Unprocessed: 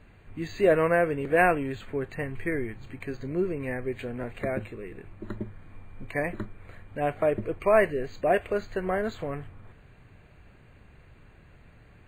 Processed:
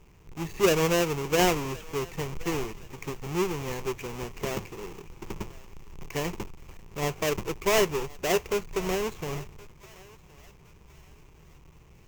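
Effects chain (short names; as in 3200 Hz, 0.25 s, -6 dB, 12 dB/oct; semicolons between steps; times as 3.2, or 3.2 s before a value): half-waves squared off; ripple EQ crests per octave 0.75, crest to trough 8 dB; thinning echo 1.069 s, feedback 39%, high-pass 750 Hz, level -19 dB; gain -6 dB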